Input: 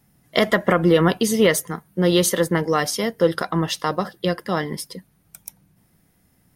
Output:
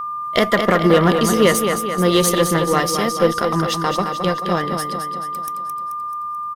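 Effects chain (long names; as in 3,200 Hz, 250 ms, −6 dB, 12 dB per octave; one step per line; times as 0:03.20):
repeating echo 217 ms, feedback 53%, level −6.5 dB
harmonic generator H 8 −27 dB, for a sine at −3 dBFS
steady tone 1,200 Hz −25 dBFS
level +1.5 dB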